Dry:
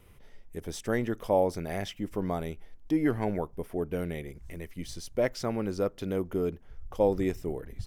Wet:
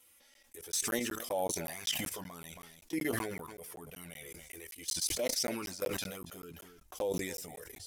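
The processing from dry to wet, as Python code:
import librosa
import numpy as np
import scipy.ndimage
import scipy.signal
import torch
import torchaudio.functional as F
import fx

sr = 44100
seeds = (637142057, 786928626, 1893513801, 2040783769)

y = fx.tracing_dist(x, sr, depth_ms=0.022)
y = fx.highpass(y, sr, hz=490.0, slope=6)
y = fx.peak_eq(y, sr, hz=9000.0, db=13.0, octaves=2.9)
y = fx.env_flanger(y, sr, rest_ms=3.9, full_db=-25.0)
y = fx.high_shelf(y, sr, hz=5000.0, db=7.0)
y = fx.doubler(y, sr, ms=12.0, db=-5.5)
y = y + 10.0 ** (-20.5 / 20.0) * np.pad(y, (int(274 * sr / 1000.0), 0))[:len(y)]
y = fx.level_steps(y, sr, step_db=16)
y = fx.buffer_crackle(y, sr, first_s=0.34, period_s=0.19, block=512, kind='zero')
y = fx.sustainer(y, sr, db_per_s=39.0)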